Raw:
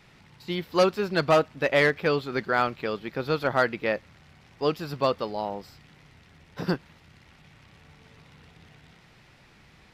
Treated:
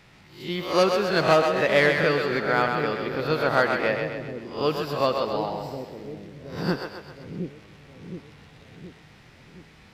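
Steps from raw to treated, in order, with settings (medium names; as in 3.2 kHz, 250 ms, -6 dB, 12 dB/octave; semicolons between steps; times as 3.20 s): reverse spectral sustain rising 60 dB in 0.43 s; two-band feedback delay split 420 Hz, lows 719 ms, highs 130 ms, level -5 dB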